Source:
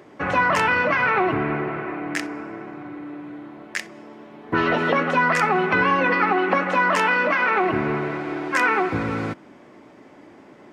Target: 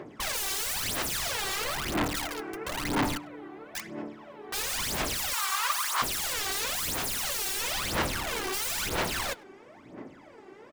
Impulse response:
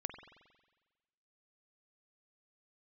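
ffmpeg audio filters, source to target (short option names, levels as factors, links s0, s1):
-filter_complex "[0:a]asplit=3[s0][s1][s2];[s0]afade=t=out:st=2.65:d=0.02[s3];[s1]acontrast=78,afade=t=in:st=2.65:d=0.02,afade=t=out:st=3.17:d=0.02[s4];[s2]afade=t=in:st=3.17:d=0.02[s5];[s3][s4][s5]amix=inputs=3:normalize=0,asettb=1/sr,asplit=3[s6][s7][s8];[s6]atrim=end=6.594[s9];[s7]atrim=start=6.59:end=7.59,asetpts=PTS-STARTPTS,afade=t=in:d=0.004:c=qsin,afade=t=out:st=0.996:d=0.004:c=qsin,aecho=1:1:4.6:0.35,atrim=end_sample=44100[s10];[s8]atrim=start=7.586[s11];[s9][s10]acrossfade=d=0.004:c1=hsin:c2=qsin[s12];[s12][s11]acrossfade=d=0.004:c1=qsin:c2=hsin,aeval=exprs='(mod(16.8*val(0)+1,2)-1)/16.8':c=same,aphaser=in_gain=1:out_gain=1:delay=2.6:decay=0.73:speed=1:type=sinusoidal,asettb=1/sr,asplit=3[s13][s14][s15];[s13]atrim=end=5.334[s16];[s14]atrim=start=5.33:end=6.02,asetpts=PTS-STARTPTS,afade=t=in:d=0.004:c=qsin,afade=t=out:st=0.686:d=0.004:c=qsin,highpass=f=1100:t=q:w=4.1[s17];[s15]atrim=start=6.016[s18];[s16][s17]acrossfade=d=0.004:c1=hsin:c2=qsin[s19];[s19][s18]acrossfade=d=0.004:c1=qsin:c2=hsin,asplit=2[s20][s21];[s21]adelay=100,highpass=300,lowpass=3400,asoftclip=type=hard:threshold=0.0266,volume=0.158[s22];[s20][s22]amix=inputs=2:normalize=0,volume=0.531"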